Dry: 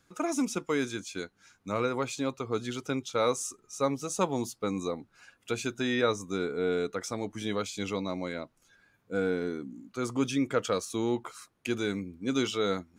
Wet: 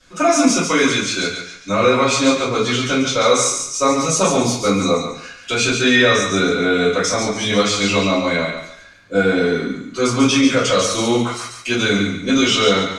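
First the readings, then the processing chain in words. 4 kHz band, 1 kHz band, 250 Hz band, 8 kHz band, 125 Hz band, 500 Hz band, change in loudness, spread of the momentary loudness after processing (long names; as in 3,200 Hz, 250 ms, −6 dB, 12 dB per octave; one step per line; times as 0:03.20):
+20.0 dB, +15.5 dB, +14.0 dB, +18.5 dB, +14.0 dB, +13.5 dB, +15.0 dB, 9 LU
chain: low-pass filter 9,000 Hz 12 dB per octave
parametric band 4,000 Hz +9.5 dB 2.8 octaves
brickwall limiter −17 dBFS, peak gain reduction 7.5 dB
feedback echo with a high-pass in the loop 141 ms, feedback 34%, high-pass 760 Hz, level −5.5 dB
rectangular room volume 37 cubic metres, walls mixed, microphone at 2.5 metres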